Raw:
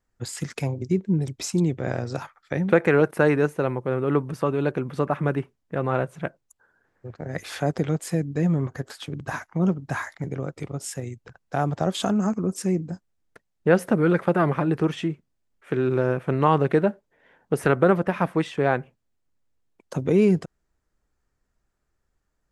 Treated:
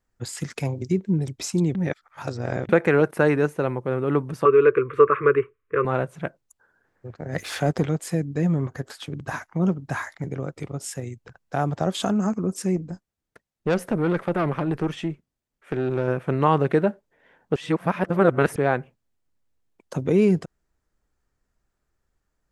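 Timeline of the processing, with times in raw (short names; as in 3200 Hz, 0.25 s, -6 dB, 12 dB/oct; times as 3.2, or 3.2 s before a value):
0.65–1.2 mismatched tape noise reduction encoder only
1.75–2.69 reverse
4.45–5.85 EQ curve 120 Hz 0 dB, 180 Hz -17 dB, 300 Hz -3 dB, 440 Hz +14 dB, 770 Hz -26 dB, 1100 Hz +13 dB, 1700 Hz +6 dB, 2400 Hz +8 dB, 4700 Hz -19 dB, 7300 Hz -11 dB
7.32–7.86 sample leveller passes 1
12.76–16.08 tube stage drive 16 dB, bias 0.45
17.56–18.56 reverse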